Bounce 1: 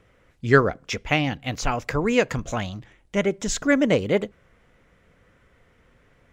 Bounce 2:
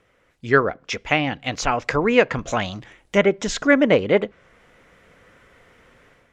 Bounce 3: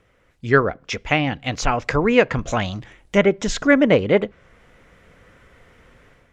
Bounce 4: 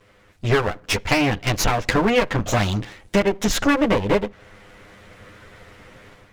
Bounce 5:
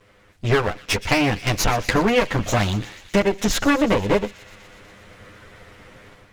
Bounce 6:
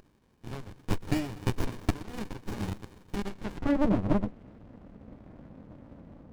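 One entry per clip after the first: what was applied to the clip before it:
low-pass that closes with the level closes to 3 kHz, closed at -19.5 dBFS; bass shelf 210 Hz -10 dB; level rider gain up to 9 dB
bass shelf 140 Hz +8.5 dB
comb filter that takes the minimum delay 9.8 ms; compression 5:1, threshold -23 dBFS, peak gain reduction 12 dB; trim +7.5 dB
feedback echo behind a high-pass 122 ms, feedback 77%, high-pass 2.4 kHz, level -15.5 dB
added noise brown -34 dBFS; band-pass sweep 5.3 kHz -> 280 Hz, 3.18–3.78 s; sliding maximum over 65 samples; trim +2.5 dB

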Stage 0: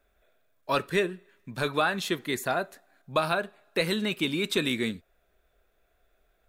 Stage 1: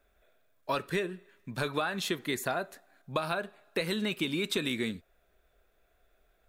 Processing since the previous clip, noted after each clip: compression, threshold -27 dBFS, peak gain reduction 8 dB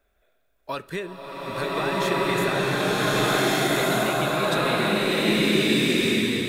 swelling reverb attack 1540 ms, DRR -11.5 dB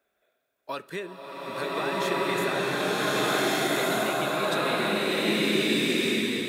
high-pass 190 Hz 12 dB/octave; trim -3 dB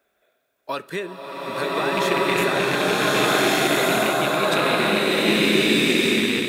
rattle on loud lows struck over -33 dBFS, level -20 dBFS; trim +6 dB

